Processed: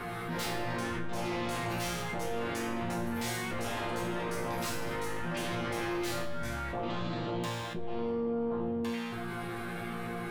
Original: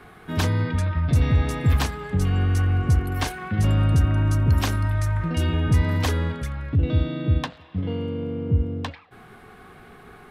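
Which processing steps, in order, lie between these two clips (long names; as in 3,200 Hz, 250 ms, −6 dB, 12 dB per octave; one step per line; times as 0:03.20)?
sine wavefolder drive 15 dB, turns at −11 dBFS
resonators tuned to a chord A#2 fifth, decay 0.7 s
envelope flattener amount 70%
level −8 dB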